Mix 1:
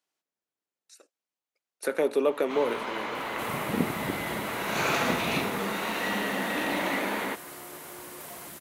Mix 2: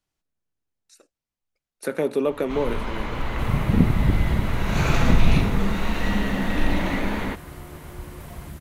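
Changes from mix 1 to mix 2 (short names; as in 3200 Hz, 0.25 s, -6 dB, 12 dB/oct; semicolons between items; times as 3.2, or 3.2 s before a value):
second sound: add high shelf 4100 Hz -8 dB; master: remove HPF 350 Hz 12 dB/oct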